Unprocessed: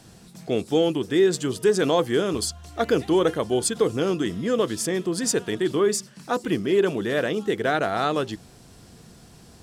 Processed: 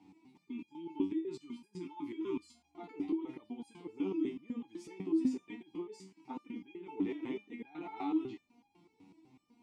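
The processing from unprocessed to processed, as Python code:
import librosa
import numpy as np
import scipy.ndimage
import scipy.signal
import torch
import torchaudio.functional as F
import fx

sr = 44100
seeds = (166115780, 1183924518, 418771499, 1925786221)

y = fx.over_compress(x, sr, threshold_db=-25.0, ratio=-1.0)
y = fx.spec_erase(y, sr, start_s=0.45, length_s=2.1, low_hz=420.0, high_hz=840.0)
y = fx.vowel_filter(y, sr, vowel='u')
y = fx.resonator_held(y, sr, hz=8.0, low_hz=95.0, high_hz=810.0)
y = y * 10.0 ** (9.5 / 20.0)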